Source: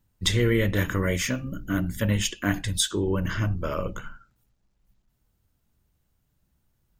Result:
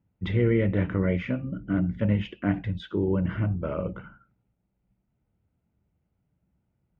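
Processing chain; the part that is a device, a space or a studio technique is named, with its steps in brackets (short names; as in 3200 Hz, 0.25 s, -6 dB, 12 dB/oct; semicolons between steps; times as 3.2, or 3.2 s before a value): bass cabinet (speaker cabinet 67–2200 Hz, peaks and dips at 180 Hz +4 dB, 1100 Hz -8 dB, 1700 Hz -10 dB)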